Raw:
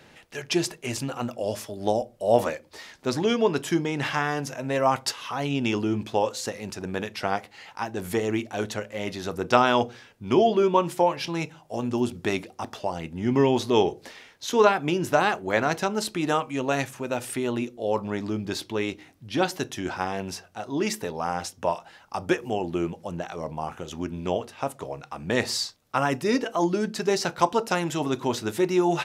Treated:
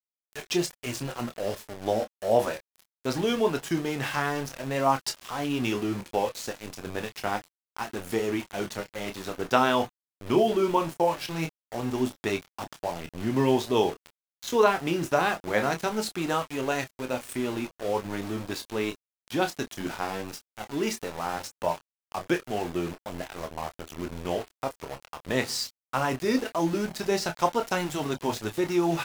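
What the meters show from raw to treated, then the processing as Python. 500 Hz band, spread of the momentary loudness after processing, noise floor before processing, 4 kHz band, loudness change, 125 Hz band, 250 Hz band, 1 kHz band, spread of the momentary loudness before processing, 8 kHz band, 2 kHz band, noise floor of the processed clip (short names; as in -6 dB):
-2.5 dB, 12 LU, -54 dBFS, -2.5 dB, -2.5 dB, -3.0 dB, -2.5 dB, -2.5 dB, 12 LU, -2.0 dB, -2.0 dB, under -85 dBFS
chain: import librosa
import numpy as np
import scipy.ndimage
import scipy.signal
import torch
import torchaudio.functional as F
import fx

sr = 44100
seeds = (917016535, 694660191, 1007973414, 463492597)

y = np.where(np.abs(x) >= 10.0 ** (-32.0 / 20.0), x, 0.0)
y = fx.vibrato(y, sr, rate_hz=0.44, depth_cents=44.0)
y = fx.chorus_voices(y, sr, voices=4, hz=0.12, base_ms=27, depth_ms=4.2, mix_pct=30)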